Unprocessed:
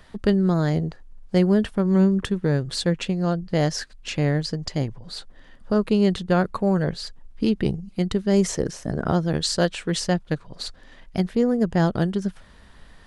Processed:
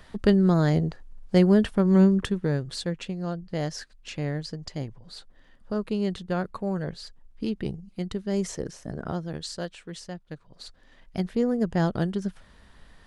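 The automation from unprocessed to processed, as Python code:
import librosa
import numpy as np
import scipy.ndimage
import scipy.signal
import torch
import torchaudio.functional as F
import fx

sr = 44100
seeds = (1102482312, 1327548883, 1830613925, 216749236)

y = fx.gain(x, sr, db=fx.line((2.04, 0.0), (2.93, -8.0), (8.89, -8.0), (10.14, -16.0), (11.33, -4.0)))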